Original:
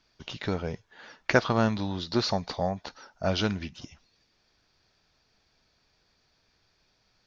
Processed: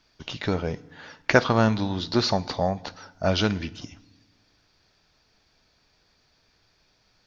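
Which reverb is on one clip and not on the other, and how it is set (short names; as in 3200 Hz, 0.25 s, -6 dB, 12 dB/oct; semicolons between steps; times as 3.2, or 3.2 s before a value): FDN reverb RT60 0.99 s, low-frequency decay 1.6×, high-frequency decay 0.9×, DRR 17.5 dB; gain +4 dB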